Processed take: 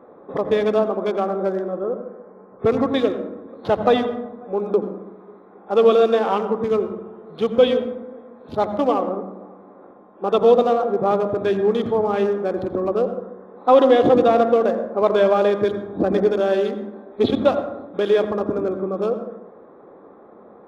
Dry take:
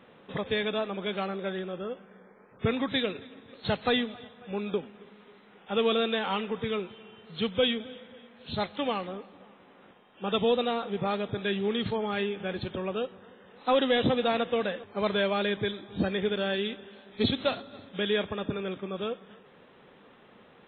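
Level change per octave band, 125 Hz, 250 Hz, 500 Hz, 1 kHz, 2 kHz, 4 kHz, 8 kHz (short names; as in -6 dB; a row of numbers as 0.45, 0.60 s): +4.0 dB, +8.0 dB, +12.5 dB, +11.0 dB, +0.5 dB, -2.5 dB, n/a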